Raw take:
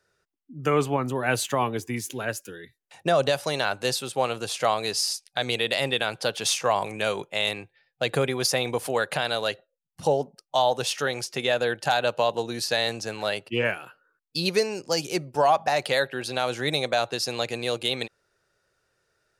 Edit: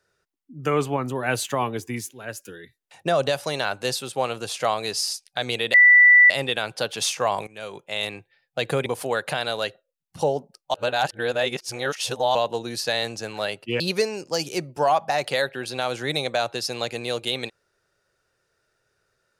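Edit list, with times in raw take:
0:02.10–0:02.47: fade in, from −17 dB
0:05.74: insert tone 1,970 Hz −9 dBFS 0.56 s
0:06.91–0:07.59: fade in, from −18.5 dB
0:08.30–0:08.70: remove
0:10.58–0:12.19: reverse
0:13.64–0:14.38: remove

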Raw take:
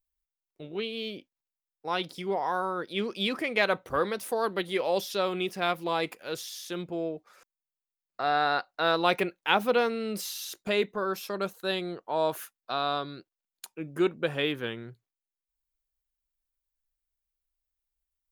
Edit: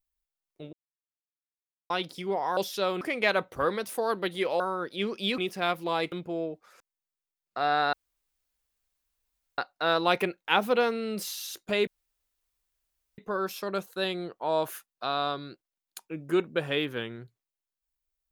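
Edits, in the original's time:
0:00.73–0:01.90: silence
0:02.57–0:03.35: swap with 0:04.94–0:05.38
0:06.12–0:06.75: remove
0:08.56: splice in room tone 1.65 s
0:10.85: splice in room tone 1.31 s

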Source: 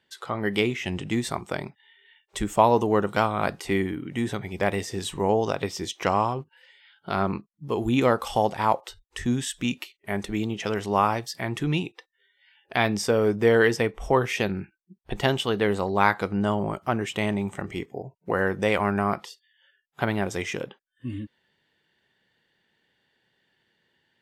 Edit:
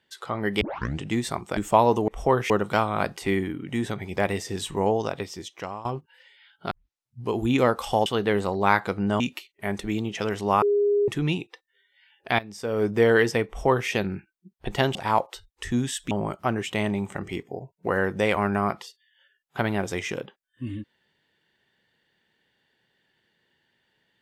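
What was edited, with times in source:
0:00.61: tape start 0.39 s
0:01.57–0:02.42: remove
0:05.24–0:06.28: fade out, to −17.5 dB
0:07.14: tape start 0.60 s
0:08.49–0:09.65: swap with 0:15.40–0:16.54
0:11.07–0:11.53: beep over 409 Hz −18 dBFS
0:12.84–0:13.32: fade in quadratic, from −17 dB
0:13.92–0:14.34: duplicate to 0:02.93

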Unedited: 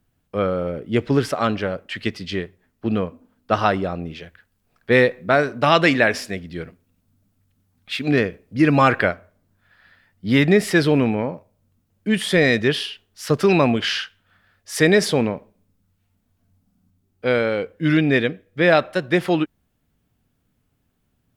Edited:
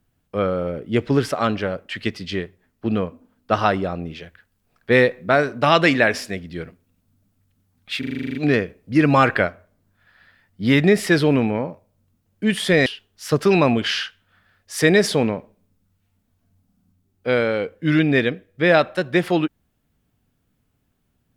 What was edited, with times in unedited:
0:07.99: stutter 0.04 s, 10 plays
0:12.50–0:12.84: remove

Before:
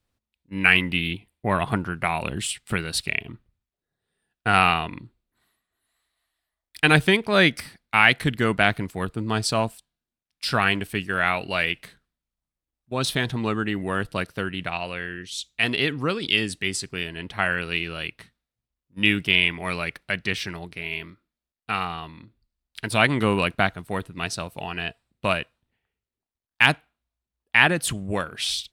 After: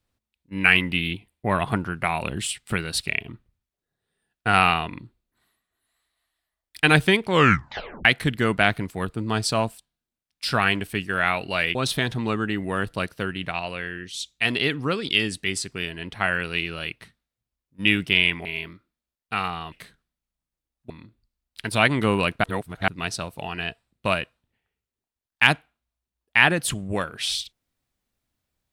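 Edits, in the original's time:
0:07.23: tape stop 0.82 s
0:11.75–0:12.93: move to 0:22.09
0:19.63–0:20.82: remove
0:23.63–0:24.07: reverse

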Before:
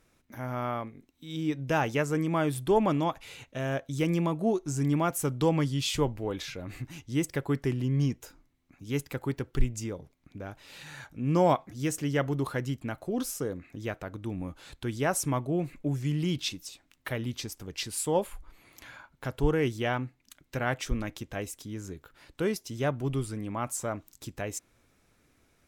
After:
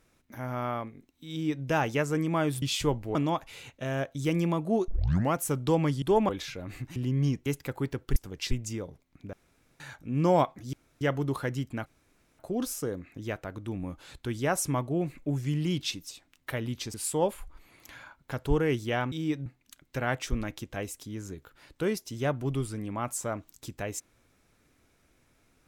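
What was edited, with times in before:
0:01.31–0:01.65: duplicate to 0:20.05
0:02.62–0:02.89: swap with 0:05.76–0:06.29
0:04.62: tape start 0.46 s
0:06.96–0:07.73: remove
0:08.23–0:08.92: remove
0:10.44–0:10.91: fill with room tone
0:11.84–0:12.12: fill with room tone
0:12.97: splice in room tone 0.53 s
0:17.52–0:17.87: move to 0:09.62

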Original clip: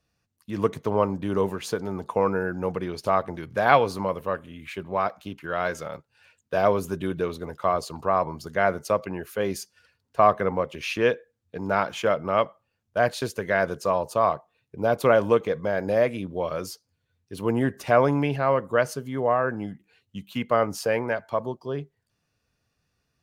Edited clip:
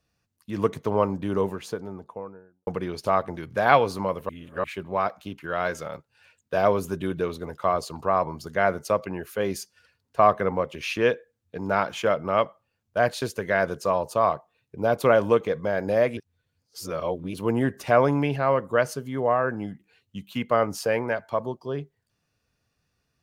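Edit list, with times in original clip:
0:01.15–0:02.67: fade out and dull
0:04.29–0:04.64: reverse
0:16.17–0:17.34: reverse

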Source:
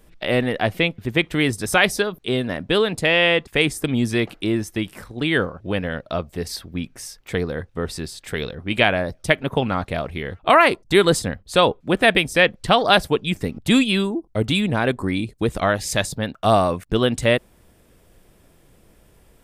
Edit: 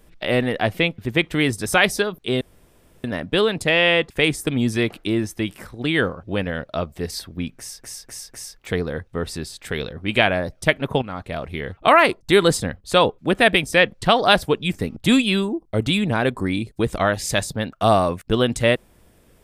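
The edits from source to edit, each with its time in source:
0:02.41: splice in room tone 0.63 s
0:06.93–0:07.18: repeat, 4 plays
0:09.64–0:10.21: fade in, from −12 dB

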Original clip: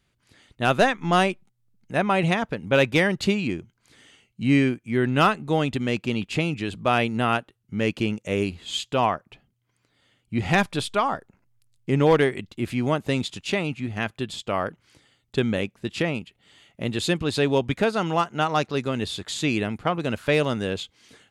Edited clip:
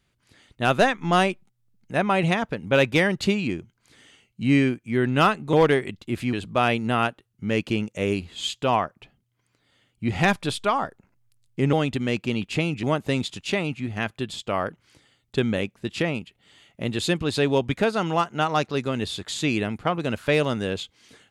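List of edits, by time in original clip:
0:05.53–0:06.63: swap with 0:12.03–0:12.83

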